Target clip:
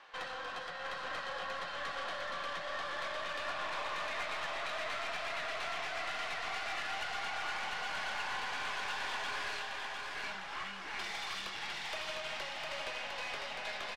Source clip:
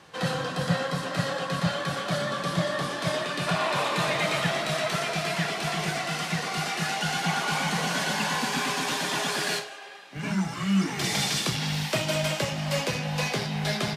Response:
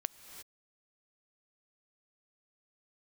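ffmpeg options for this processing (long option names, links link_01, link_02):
-filter_complex "[0:a]acompressor=threshold=-30dB:ratio=8,highpass=790,lowpass=3200,aeval=exprs='(tanh(56.2*val(0)+0.4)-tanh(0.4))/56.2':channel_layout=same,asplit=2[link_01][link_02];[link_02]aecho=0:1:705|1410|2115|2820|3525|4230|4935:0.631|0.322|0.164|0.0837|0.0427|0.0218|0.0111[link_03];[link_01][link_03]amix=inputs=2:normalize=0"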